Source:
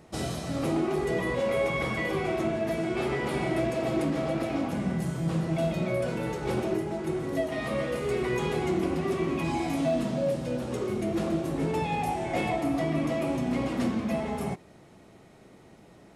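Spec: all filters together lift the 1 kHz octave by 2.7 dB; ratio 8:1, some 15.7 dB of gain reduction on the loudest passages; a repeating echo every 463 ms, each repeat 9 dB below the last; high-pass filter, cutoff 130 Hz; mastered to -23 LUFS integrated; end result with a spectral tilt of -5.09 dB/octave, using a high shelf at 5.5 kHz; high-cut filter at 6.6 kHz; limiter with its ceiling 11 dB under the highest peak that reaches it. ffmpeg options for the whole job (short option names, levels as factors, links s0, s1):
-af "highpass=130,lowpass=6600,equalizer=f=1000:t=o:g=3.5,highshelf=f=5500:g=6,acompressor=threshold=0.01:ratio=8,alimiter=level_in=7.08:limit=0.0631:level=0:latency=1,volume=0.141,aecho=1:1:463|926|1389|1852:0.355|0.124|0.0435|0.0152,volume=18.8"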